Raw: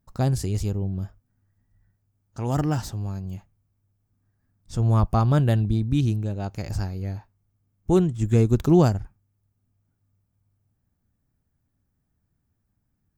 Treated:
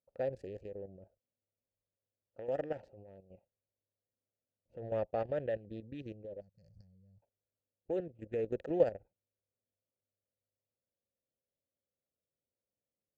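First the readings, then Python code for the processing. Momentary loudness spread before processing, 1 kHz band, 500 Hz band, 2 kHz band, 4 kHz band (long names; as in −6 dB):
15 LU, −16.0 dB, −7.0 dB, −12.5 dB, below −20 dB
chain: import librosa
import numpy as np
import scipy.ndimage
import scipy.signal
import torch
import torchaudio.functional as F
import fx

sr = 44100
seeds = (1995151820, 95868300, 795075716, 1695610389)

y = fx.wiener(x, sr, points=25)
y = fx.vowel_filter(y, sr, vowel='e')
y = fx.peak_eq(y, sr, hz=900.0, db=8.5, octaves=2.6)
y = fx.spec_box(y, sr, start_s=6.4, length_s=0.83, low_hz=210.0, high_hz=4200.0, gain_db=-27)
y = fx.level_steps(y, sr, step_db=11)
y = fx.low_shelf(y, sr, hz=84.0, db=9.5)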